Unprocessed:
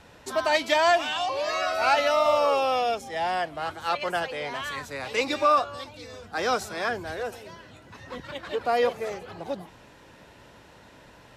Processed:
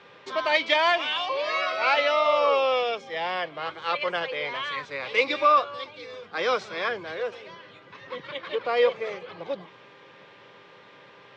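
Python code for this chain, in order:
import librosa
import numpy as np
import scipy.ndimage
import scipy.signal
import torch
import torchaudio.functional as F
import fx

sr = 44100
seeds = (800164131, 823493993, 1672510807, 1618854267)

y = fx.dmg_buzz(x, sr, base_hz=400.0, harmonics=4, level_db=-57.0, tilt_db=-1, odd_only=False)
y = fx.cabinet(y, sr, low_hz=130.0, low_slope=24, high_hz=5200.0, hz=(240.0, 510.0, 740.0, 1100.0, 2200.0, 3300.0), db=(-6, 7, -5, 6, 9, 7))
y = y * librosa.db_to_amplitude(-2.5)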